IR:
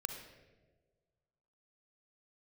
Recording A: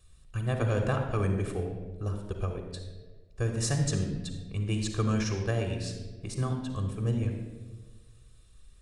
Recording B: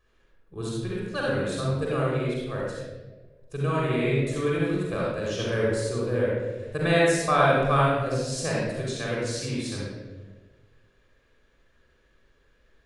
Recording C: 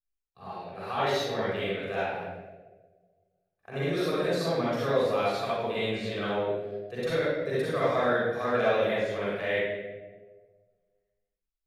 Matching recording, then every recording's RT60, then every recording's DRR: A; 1.5 s, 1.4 s, 1.4 s; 4.5 dB, -5.0 dB, -9.5 dB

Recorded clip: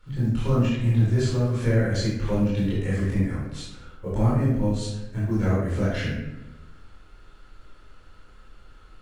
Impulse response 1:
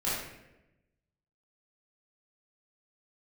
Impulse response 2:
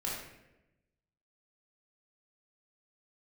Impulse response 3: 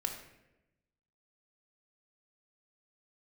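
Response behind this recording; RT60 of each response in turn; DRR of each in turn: 1; 0.95 s, 0.95 s, 0.95 s; -9.0 dB, -4.5 dB, 4.5 dB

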